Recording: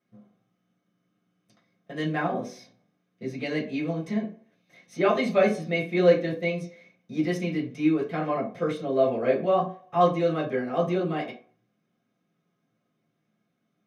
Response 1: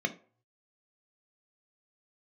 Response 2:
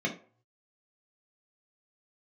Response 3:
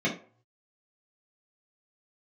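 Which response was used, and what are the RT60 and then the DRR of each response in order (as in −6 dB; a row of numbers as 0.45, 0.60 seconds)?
3; 0.45, 0.45, 0.45 seconds; 5.5, −2.0, −7.0 decibels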